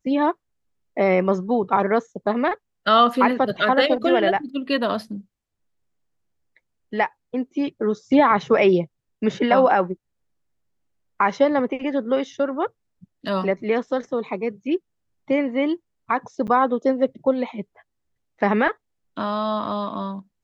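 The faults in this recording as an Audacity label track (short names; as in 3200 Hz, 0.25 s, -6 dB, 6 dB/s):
16.470000	16.480000	gap 8.9 ms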